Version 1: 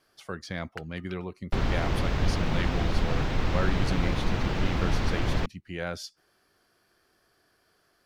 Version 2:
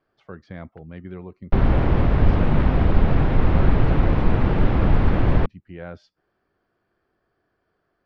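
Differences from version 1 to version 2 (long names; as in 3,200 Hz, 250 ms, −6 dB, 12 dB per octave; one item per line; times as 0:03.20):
first sound −11.5 dB
second sound +10.0 dB
master: add head-to-tape spacing loss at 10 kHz 41 dB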